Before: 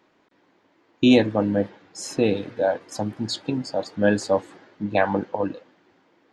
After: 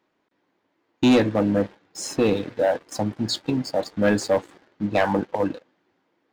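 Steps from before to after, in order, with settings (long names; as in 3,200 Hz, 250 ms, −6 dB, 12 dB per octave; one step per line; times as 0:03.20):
leveller curve on the samples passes 2
level −5 dB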